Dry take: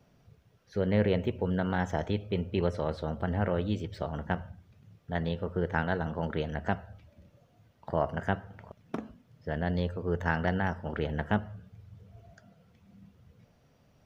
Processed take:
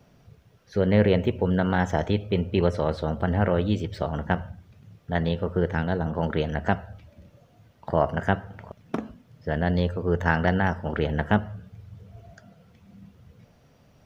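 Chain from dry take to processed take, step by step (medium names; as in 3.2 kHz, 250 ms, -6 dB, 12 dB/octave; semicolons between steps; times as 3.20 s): 5.72–6.13 s: peaking EQ 860 Hz -> 3.3 kHz -8 dB 2.4 oct; trim +6.5 dB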